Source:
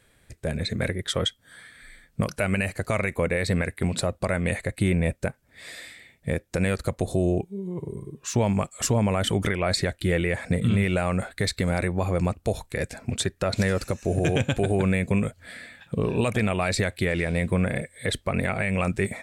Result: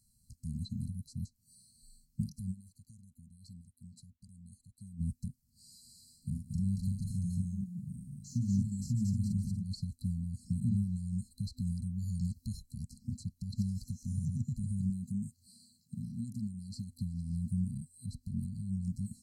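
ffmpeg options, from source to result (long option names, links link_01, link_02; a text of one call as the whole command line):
ffmpeg -i in.wav -filter_complex "[0:a]asplit=3[link_01][link_02][link_03];[link_01]afade=type=out:start_time=5.83:duration=0.02[link_04];[link_02]aecho=1:1:41|146|230|284:0.562|0.112|0.631|0.106,afade=type=in:start_time=5.83:duration=0.02,afade=type=out:start_time=9.65:duration=0.02[link_05];[link_03]afade=type=in:start_time=9.65:duration=0.02[link_06];[link_04][link_05][link_06]amix=inputs=3:normalize=0,asplit=3[link_07][link_08][link_09];[link_07]afade=type=out:start_time=12.08:duration=0.02[link_10];[link_08]highshelf=frequency=2900:width_type=q:width=3:gain=7.5,afade=type=in:start_time=12.08:duration=0.02,afade=type=out:start_time=12.59:duration=0.02[link_11];[link_09]afade=type=in:start_time=12.59:duration=0.02[link_12];[link_10][link_11][link_12]amix=inputs=3:normalize=0,asettb=1/sr,asplit=3[link_13][link_14][link_15];[link_13]atrim=end=14.904[link_16];[link_14]atrim=start=14.9:end=16.92,asetpts=PTS-STARTPTS,afade=type=in:duration=0.004:curve=qsin,afade=type=out:start_time=2.016:duration=0.004:curve=qsin,highpass=frequency=190:poles=1[link_17];[link_15]atrim=start=16.916[link_18];[link_16][link_17]acrossfade=duration=0.004:curve1=hsin:curve2=qsin[link_19];[link_19][link_18]acrossfade=duration=0.004:curve1=qsin:curve2=hsin,asplit=3[link_20][link_21][link_22];[link_20]atrim=end=2.64,asetpts=PTS-STARTPTS,afade=type=out:start_time=2.51:duration=0.13:curve=exp:silence=0.133352[link_23];[link_21]atrim=start=2.64:end=4.88,asetpts=PTS-STARTPTS,volume=-17.5dB[link_24];[link_22]atrim=start=4.88,asetpts=PTS-STARTPTS,afade=type=in:duration=0.13:curve=exp:silence=0.133352[link_25];[link_23][link_24][link_25]concat=n=3:v=0:a=1,acrossover=split=2600[link_26][link_27];[link_27]acompressor=threshold=-47dB:ratio=4:attack=1:release=60[link_28];[link_26][link_28]amix=inputs=2:normalize=0,afftfilt=real='re*(1-between(b*sr/4096,250,4000))':imag='im*(1-between(b*sr/4096,250,4000))':win_size=4096:overlap=0.75,highshelf=frequency=4300:gain=5,volume=-8.5dB" out.wav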